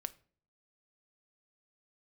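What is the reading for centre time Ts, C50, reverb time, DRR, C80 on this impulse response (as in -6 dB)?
2 ms, 20.0 dB, 0.45 s, 12.5 dB, 25.0 dB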